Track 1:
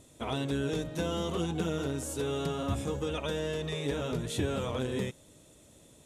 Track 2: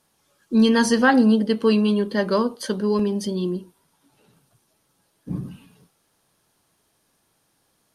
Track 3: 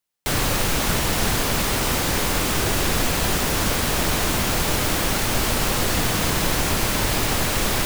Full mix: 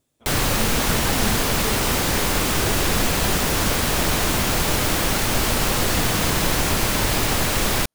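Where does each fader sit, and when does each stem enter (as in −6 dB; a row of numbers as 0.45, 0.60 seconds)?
−17.0, −16.0, +1.0 decibels; 0.00, 0.00, 0.00 seconds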